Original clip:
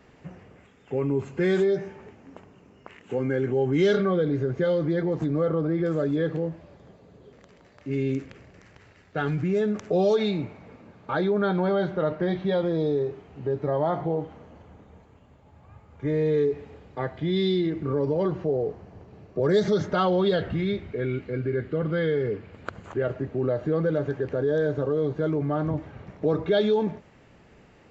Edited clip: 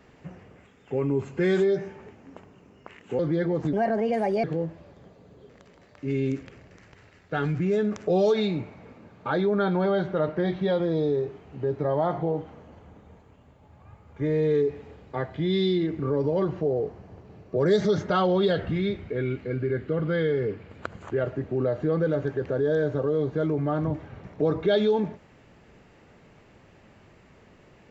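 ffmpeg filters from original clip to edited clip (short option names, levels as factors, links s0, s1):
-filter_complex "[0:a]asplit=4[s0][s1][s2][s3];[s0]atrim=end=3.192[s4];[s1]atrim=start=4.758:end=5.304[s5];[s2]atrim=start=5.3:end=6.27,asetpts=PTS-STARTPTS,asetrate=60417,aresample=44100,atrim=end_sample=31224,asetpts=PTS-STARTPTS[s6];[s3]atrim=start=6.266[s7];[s4][s5]acrossfade=d=0.004:c1=hsin:c2=hsin[s8];[s8][s6]acrossfade=d=0.004:c1=hsin:c2=hsin[s9];[s9][s7]acrossfade=d=0.004:c1=hsin:c2=hsin"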